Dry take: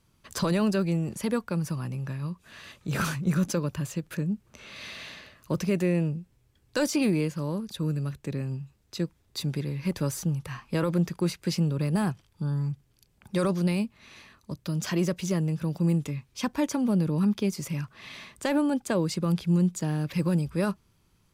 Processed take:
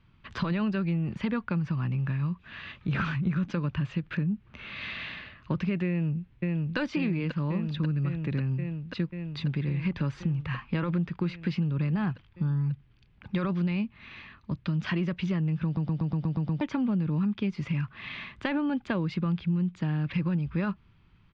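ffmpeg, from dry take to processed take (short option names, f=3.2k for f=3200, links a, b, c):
-filter_complex "[0:a]asplit=2[a][b];[b]afade=t=in:st=5.88:d=0.01,afade=t=out:st=6.77:d=0.01,aecho=0:1:540|1080|1620|2160|2700|3240|3780|4320|4860|5400|5940|6480:0.562341|0.449873|0.359898|0.287919|0.230335|0.184268|0.147414|0.117932|0.0943452|0.0754762|0.0603809|0.0483048[c];[a][c]amix=inputs=2:normalize=0,asplit=9[d][e][f][g][h][i][j][k][l];[d]atrim=end=15.772[m];[e]atrim=start=15.648:end=15.772[n];[f]atrim=start=15.648:end=15.772[o];[g]atrim=start=15.648:end=15.772[p];[h]atrim=start=15.648:end=15.772[q];[i]atrim=start=15.648:end=15.772[r];[j]atrim=start=15.648:end=15.772[s];[k]atrim=start=15.648:end=15.772[t];[l]atrim=start=16.608[u];[m][n]acrossfade=d=0.004:c1=hsin:c2=hsin[v];[v][o]acrossfade=d=0.004:c1=hsin:c2=hsin[w];[w][p]acrossfade=d=0.004:c1=hsin:c2=hsin[x];[x][q]acrossfade=d=0.004:c1=hsin:c2=hsin[y];[y][r]acrossfade=d=0.004:c1=hsin:c2=hsin[z];[z][s]acrossfade=d=0.004:c1=hsin:c2=hsin[aa];[aa][t]acrossfade=d=0.004:c1=hsin:c2=hsin[ab];[ab][u]acrossfade=d=0.004:c1=hsin:c2=hsin,equalizer=f=520:w=0.87:g=-10,acompressor=threshold=-32dB:ratio=6,lowpass=f=3.1k:w=0.5412,lowpass=f=3.1k:w=1.3066,volume=7dB"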